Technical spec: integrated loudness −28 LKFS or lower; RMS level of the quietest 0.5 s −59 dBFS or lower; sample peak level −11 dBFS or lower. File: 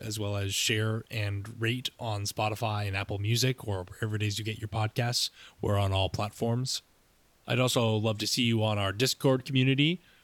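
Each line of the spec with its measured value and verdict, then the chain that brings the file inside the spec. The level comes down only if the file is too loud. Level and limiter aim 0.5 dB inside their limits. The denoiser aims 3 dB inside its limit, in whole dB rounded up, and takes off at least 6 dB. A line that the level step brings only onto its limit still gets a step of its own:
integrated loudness −29.5 LKFS: in spec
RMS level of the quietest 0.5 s −65 dBFS: in spec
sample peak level −13.0 dBFS: in spec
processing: no processing needed

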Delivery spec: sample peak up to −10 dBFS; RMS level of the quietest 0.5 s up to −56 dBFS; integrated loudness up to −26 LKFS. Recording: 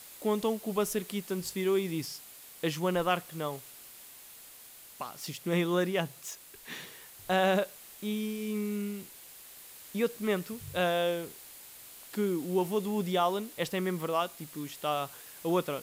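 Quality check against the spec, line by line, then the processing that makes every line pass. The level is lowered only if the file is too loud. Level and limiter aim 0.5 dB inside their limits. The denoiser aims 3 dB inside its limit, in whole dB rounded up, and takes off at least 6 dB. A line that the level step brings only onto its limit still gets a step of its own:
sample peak −15.5 dBFS: in spec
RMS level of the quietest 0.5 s −52 dBFS: out of spec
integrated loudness −32.0 LKFS: in spec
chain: broadband denoise 7 dB, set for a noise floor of −52 dBFS

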